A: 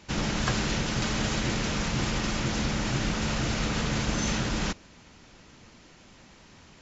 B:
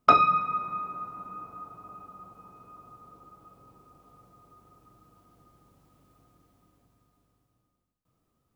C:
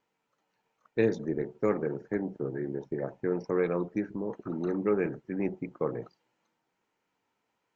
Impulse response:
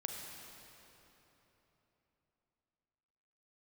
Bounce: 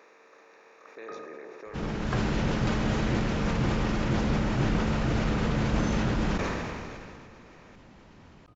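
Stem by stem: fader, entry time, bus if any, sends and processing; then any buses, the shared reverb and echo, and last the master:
-4.0 dB, 1.65 s, no send, level rider gain up to 6 dB; low-pass 1.2 kHz 6 dB/octave
-16.5 dB, 1.00 s, no send, low-pass 3.1 kHz 12 dB/octave; auto duck -17 dB, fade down 1.45 s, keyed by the third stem
-10.0 dB, 0.00 s, send -5.5 dB, spectral levelling over time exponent 0.4; high-pass 610 Hz 12 dB/octave; peak limiter -27.5 dBFS, peak gain reduction 10 dB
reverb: on, RT60 3.6 s, pre-delay 33 ms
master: decay stretcher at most 24 dB/s

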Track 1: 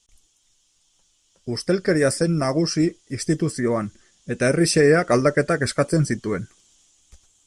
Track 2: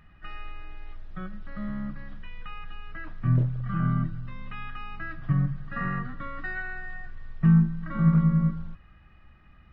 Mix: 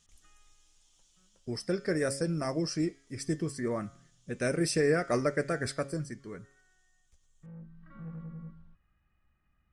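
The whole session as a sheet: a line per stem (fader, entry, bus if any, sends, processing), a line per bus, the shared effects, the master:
1.18 s -4 dB -> 1.63 s -10.5 dB -> 5.70 s -10.5 dB -> 6.11 s -18 dB, 0.00 s, no send, de-hum 137.9 Hz, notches 38
-19.0 dB, 0.00 s, no send, saturation -18.5 dBFS, distortion -13 dB; auto duck -15 dB, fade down 1.00 s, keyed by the first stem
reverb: none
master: none

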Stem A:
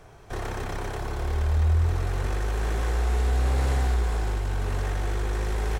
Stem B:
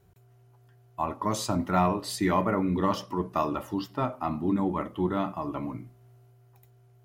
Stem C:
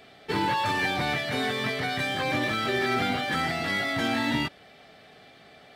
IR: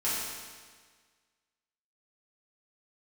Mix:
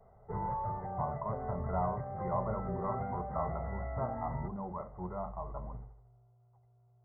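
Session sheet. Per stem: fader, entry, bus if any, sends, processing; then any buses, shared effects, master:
-13.0 dB, 0.00 s, no send, echo send -13 dB, auto duck -12 dB, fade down 0.45 s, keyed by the second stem
-5.5 dB, 0.00 s, no send, no echo send, saturation -17.5 dBFS, distortion -17 dB
-9.5 dB, 0.00 s, no send, no echo send, bass shelf 340 Hz +8.5 dB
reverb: none
echo: feedback delay 77 ms, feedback 53%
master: brick-wall FIR low-pass 2.1 kHz; static phaser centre 720 Hz, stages 4

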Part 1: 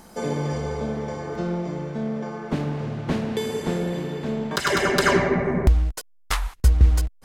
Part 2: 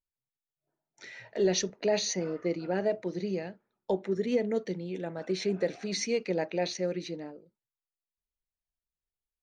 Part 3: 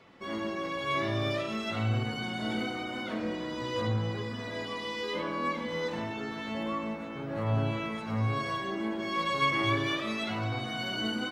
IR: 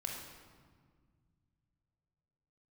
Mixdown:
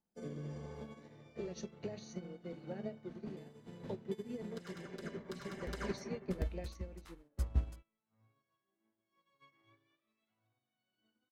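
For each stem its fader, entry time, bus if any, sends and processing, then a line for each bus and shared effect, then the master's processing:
-3.5 dB, 0.00 s, bus A, no send, echo send -13 dB, peaking EQ 190 Hz +5 dB 1.7 oct; auto duck -11 dB, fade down 0.20 s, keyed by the second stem
+1.0 dB, 0.00 s, bus A, no send, no echo send, treble shelf 4.7 kHz +9.5 dB; flange 0.23 Hz, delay 4.4 ms, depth 6.6 ms, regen +61%; tilt EQ -2 dB/octave
-5.5 dB, 0.00 s, no bus, no send, echo send -19.5 dB, feedback comb 790 Hz, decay 0.43 s, mix 70%
bus A: 0.0 dB, rotary cabinet horn 1 Hz; compression 5:1, threshold -30 dBFS, peak gain reduction 8 dB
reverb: none
echo: delay 747 ms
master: upward expansion 2.5:1, over -50 dBFS

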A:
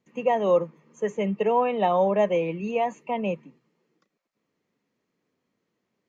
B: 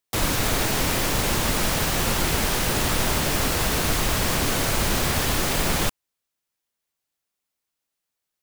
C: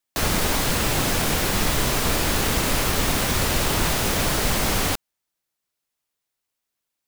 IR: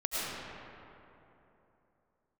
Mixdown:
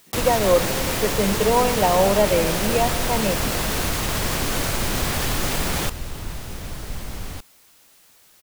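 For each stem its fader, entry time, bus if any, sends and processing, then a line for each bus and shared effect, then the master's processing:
+2.0 dB, 0.00 s, send -18 dB, none
-3.0 dB, 0.00 s, no send, level flattener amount 50%
-15.5 dB, 2.45 s, no send, bass shelf 150 Hz +12 dB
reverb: on, RT60 3.1 s, pre-delay 65 ms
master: none

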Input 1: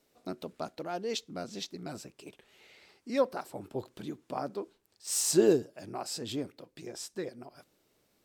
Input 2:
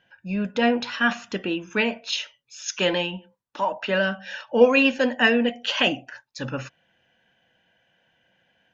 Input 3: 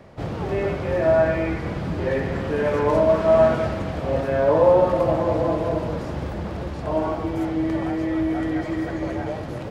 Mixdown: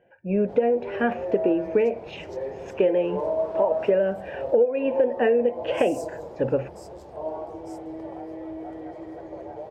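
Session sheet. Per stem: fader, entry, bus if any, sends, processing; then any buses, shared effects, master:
-13.5 dB, 0.70 s, no send, inverse Chebyshev high-pass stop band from 2.5 kHz, stop band 40 dB
+2.0 dB, 0.00 s, no send, FFT filter 490 Hz 0 dB, 940 Hz -14 dB, 2.3 kHz -5 dB, 4.2 kHz -29 dB
-20.0 dB, 0.30 s, no send, none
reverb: none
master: high-order bell 580 Hz +13 dB; compression 12:1, threshold -17 dBFS, peak gain reduction 22 dB

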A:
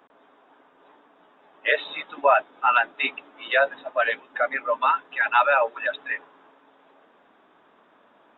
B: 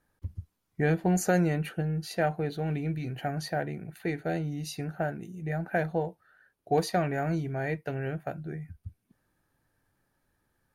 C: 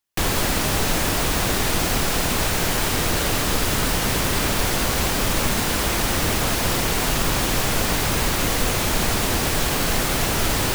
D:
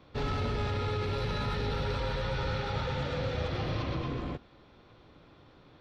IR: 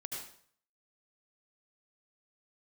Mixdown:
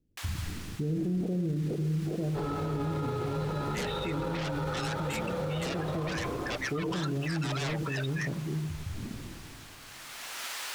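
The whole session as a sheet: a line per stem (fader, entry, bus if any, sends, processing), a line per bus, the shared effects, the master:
-16.0 dB, 2.10 s, no send, peak limiter -13 dBFS, peak gain reduction 6 dB; sine folder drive 11 dB, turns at -13 dBFS
0.0 dB, 0.00 s, send -4 dB, inverse Chebyshev low-pass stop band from 2.3 kHz, stop band 80 dB; decay stretcher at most 24 dB/s
-11.0 dB, 0.00 s, no send, high-pass 1.2 kHz 12 dB/octave; treble shelf 11 kHz -9 dB; auto duck -13 dB, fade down 0.85 s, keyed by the second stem
-5.5 dB, 2.20 s, no send, high-order bell 700 Hz +10 dB 2.4 oct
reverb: on, RT60 0.55 s, pre-delay 68 ms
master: peak limiter -24.5 dBFS, peak gain reduction 10.5 dB

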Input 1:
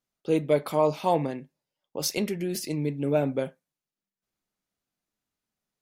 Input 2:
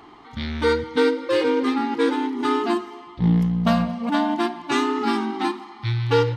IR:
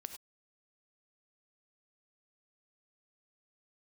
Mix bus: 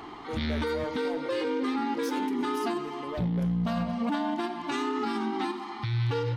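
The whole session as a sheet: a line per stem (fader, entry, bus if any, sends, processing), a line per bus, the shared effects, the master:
-11.5 dB, 0.00 s, send -8.5 dB, high-pass 260 Hz 12 dB/octave; overload inside the chain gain 22 dB
+1.5 dB, 0.00 s, send -5.5 dB, compression 2.5:1, threshold -31 dBFS, peak gain reduction 11.5 dB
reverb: on, pre-delay 3 ms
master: peak limiter -21.5 dBFS, peak gain reduction 8.5 dB

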